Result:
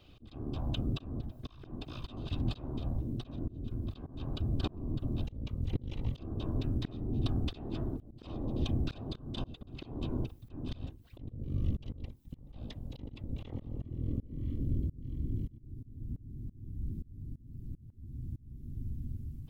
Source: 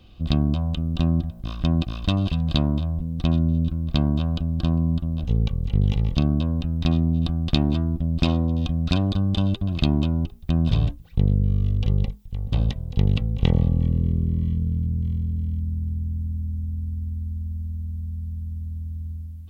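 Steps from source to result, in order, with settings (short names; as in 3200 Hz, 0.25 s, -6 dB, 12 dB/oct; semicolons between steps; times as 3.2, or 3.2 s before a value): whisperiser; bell 180 Hz -12 dB 0.47 oct; auto swell 0.467 s; gain -5 dB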